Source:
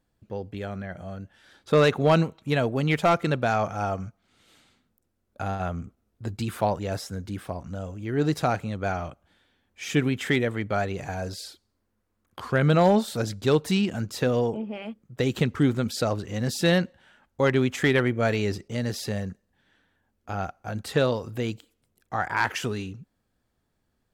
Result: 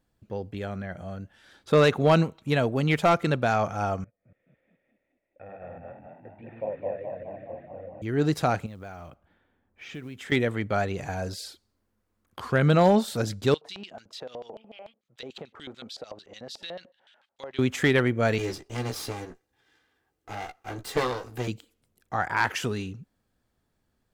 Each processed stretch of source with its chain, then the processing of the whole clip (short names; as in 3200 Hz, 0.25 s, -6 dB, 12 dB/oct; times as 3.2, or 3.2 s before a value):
4.04–8.02 reverse delay 0.145 s, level -1 dB + vocal tract filter e + frequency-shifting echo 0.21 s, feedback 58%, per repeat +38 Hz, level -5 dB
8.66–10.32 low-pass opened by the level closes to 1300 Hz, open at -23.5 dBFS + short-mantissa float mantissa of 4-bit + compressor 3:1, threshold -41 dBFS
13.54–17.59 LFO band-pass square 6.8 Hz 680–3600 Hz + compressor 5:1, threshold -35 dBFS + mismatched tape noise reduction encoder only
18.38–21.48 minimum comb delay 2.5 ms + low shelf 69 Hz -11 dB + doubler 16 ms -7 dB
whole clip: dry